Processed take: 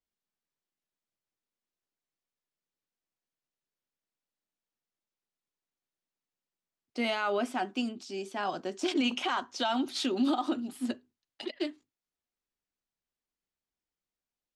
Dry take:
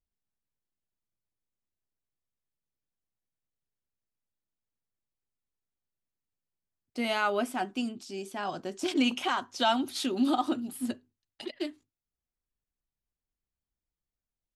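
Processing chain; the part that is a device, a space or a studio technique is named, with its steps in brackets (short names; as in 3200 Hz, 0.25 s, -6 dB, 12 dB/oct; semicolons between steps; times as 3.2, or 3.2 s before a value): DJ mixer with the lows and highs turned down (three-band isolator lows -13 dB, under 180 Hz, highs -15 dB, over 7900 Hz; limiter -21.5 dBFS, peak gain reduction 8.5 dB); gain +1.5 dB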